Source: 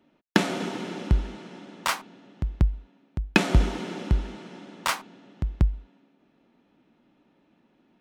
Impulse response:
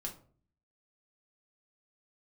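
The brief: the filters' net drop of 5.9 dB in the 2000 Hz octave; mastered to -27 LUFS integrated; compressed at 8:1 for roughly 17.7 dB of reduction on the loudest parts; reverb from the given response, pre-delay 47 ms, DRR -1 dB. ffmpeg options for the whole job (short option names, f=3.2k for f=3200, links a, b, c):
-filter_complex "[0:a]equalizer=f=2k:t=o:g=-8,acompressor=threshold=-33dB:ratio=8,asplit=2[a][b];[1:a]atrim=start_sample=2205,adelay=47[c];[b][c]afir=irnorm=-1:irlink=0,volume=2dB[d];[a][d]amix=inputs=2:normalize=0,volume=9.5dB"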